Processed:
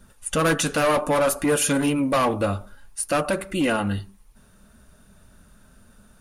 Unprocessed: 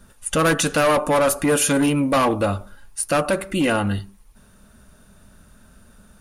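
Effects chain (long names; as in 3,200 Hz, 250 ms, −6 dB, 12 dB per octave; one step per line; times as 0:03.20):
flanger 0.59 Hz, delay 0.3 ms, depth 9.5 ms, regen −65%
level +1.5 dB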